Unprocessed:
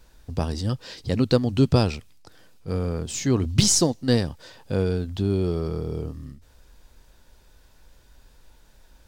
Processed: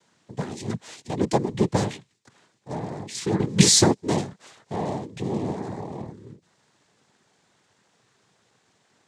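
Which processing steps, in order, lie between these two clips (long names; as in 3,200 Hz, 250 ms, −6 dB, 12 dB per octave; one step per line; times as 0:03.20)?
0:03.39–0:03.97: leveller curve on the samples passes 2
cochlear-implant simulation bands 6
level −2.5 dB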